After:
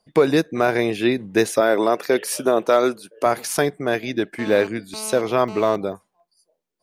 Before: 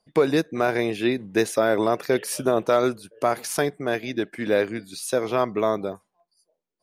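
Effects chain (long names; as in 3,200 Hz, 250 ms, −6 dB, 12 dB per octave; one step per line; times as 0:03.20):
0:01.60–0:03.26: high-pass filter 230 Hz 12 dB per octave
0:04.39–0:05.76: phone interference −39 dBFS
level +3.5 dB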